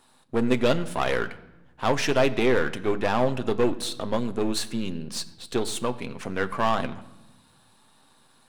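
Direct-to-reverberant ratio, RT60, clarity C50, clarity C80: 9.0 dB, 1.0 s, 16.5 dB, 17.5 dB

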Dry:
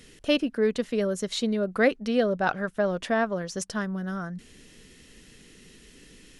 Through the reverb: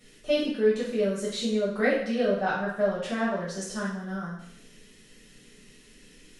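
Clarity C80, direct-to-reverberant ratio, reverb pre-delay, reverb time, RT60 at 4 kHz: 6.5 dB, −9.0 dB, 4 ms, 0.70 s, 0.70 s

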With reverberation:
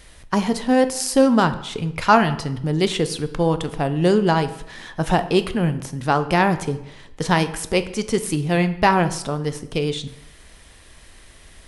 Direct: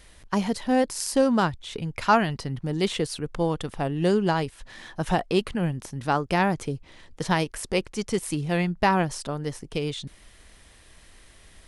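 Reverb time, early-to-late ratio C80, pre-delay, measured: 0.85 s, 16.5 dB, 5 ms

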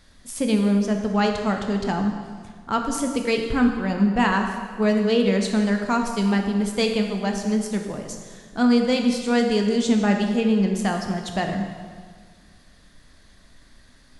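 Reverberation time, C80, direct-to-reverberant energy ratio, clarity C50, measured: 1.7 s, 6.5 dB, 3.0 dB, 5.0 dB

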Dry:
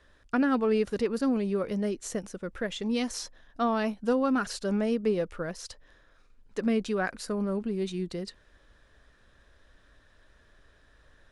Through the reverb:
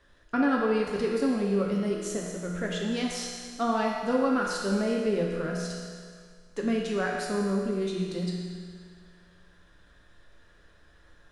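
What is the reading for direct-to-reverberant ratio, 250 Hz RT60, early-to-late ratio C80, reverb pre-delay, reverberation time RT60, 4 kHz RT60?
−2.0 dB, 1.9 s, 2.5 dB, 6 ms, 1.9 s, 1.9 s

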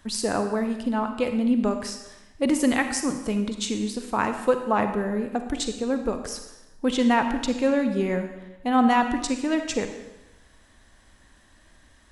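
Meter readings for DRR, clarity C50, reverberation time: 7.0 dB, 7.5 dB, 1.0 s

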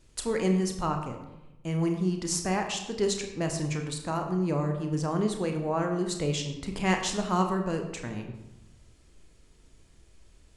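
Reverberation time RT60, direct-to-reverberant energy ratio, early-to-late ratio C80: 0.95 s, 4.0 dB, 9.0 dB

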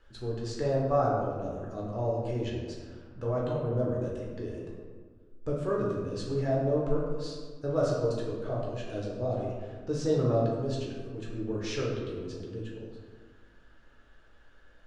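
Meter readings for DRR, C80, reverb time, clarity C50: −4.5 dB, 3.0 dB, 1.7 s, 1.0 dB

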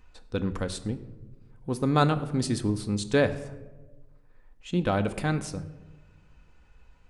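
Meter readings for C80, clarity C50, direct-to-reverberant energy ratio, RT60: 16.0 dB, 14.5 dB, 8.5 dB, 1.3 s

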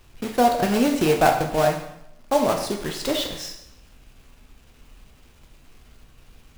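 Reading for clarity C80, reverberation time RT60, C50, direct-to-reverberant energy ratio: 9.5 dB, 0.80 s, 7.0 dB, 2.5 dB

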